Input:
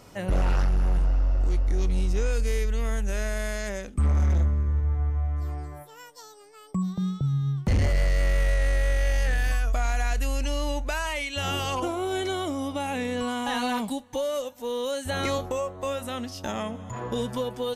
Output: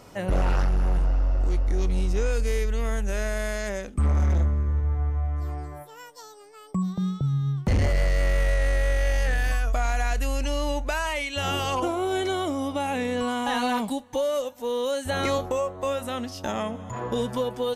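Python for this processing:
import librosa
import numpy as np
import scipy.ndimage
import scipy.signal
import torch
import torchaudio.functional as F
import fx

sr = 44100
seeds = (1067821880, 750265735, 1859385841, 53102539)

y = fx.peak_eq(x, sr, hz=680.0, db=3.0, octaves=2.9)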